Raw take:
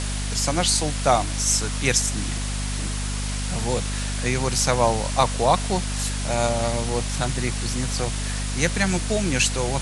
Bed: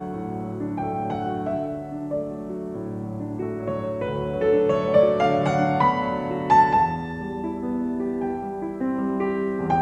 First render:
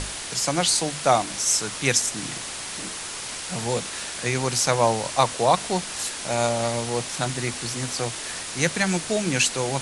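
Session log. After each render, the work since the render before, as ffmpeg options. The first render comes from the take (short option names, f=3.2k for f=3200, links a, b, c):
-af "bandreject=f=50:t=h:w=6,bandreject=f=100:t=h:w=6,bandreject=f=150:t=h:w=6,bandreject=f=200:t=h:w=6,bandreject=f=250:t=h:w=6"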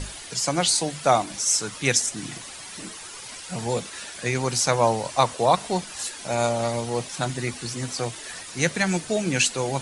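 -af "afftdn=nr=10:nf=-34"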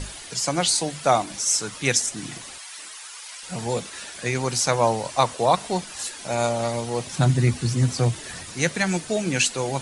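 -filter_complex "[0:a]asettb=1/sr,asplit=3[a][b][c];[a]atrim=end=2.584[d];[b]atrim=start=2.58:end=3.43,asetpts=PTS-STARTPTS,afade=t=in:d=0.004:c=qsin,afade=t=out:st=0.846:d=0.004:c=qsin,highpass=930[e];[c]atrim=start=3.426[f];[d][e]acrossfade=d=0.004:c1=hsin:c2=qsin[g];[g][f]acrossfade=d=0.004:c1=qsin:c2=hsin,asettb=1/sr,asplit=3[h][i][j];[h]atrim=end=7.064[k];[i]atrim=start=7.06:end=8.54,asetpts=PTS-STARTPTS,afade=t=in:d=0.004:c=qsin,afade=t=out:st=1.476:d=0.004:c=qsin,equalizer=f=100:t=o:w=2.6:g=14[l];[j]atrim=start=8.536[m];[k][l]acrossfade=d=0.004:c1=hsin:c2=qsin[n];[n][m]acrossfade=d=0.004:c1=qsin:c2=hsin"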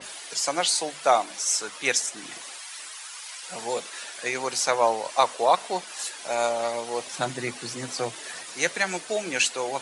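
-af "highpass=450,adynamicequalizer=threshold=0.0112:dfrequency=3900:dqfactor=0.7:tfrequency=3900:tqfactor=0.7:attack=5:release=100:ratio=0.375:range=2.5:mode=cutabove:tftype=highshelf"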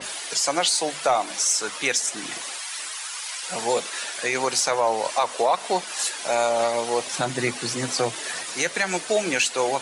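-af "acontrast=74,alimiter=limit=-11.5dB:level=0:latency=1:release=165"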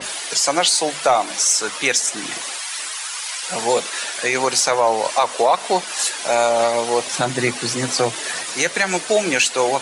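-af "volume=5dB"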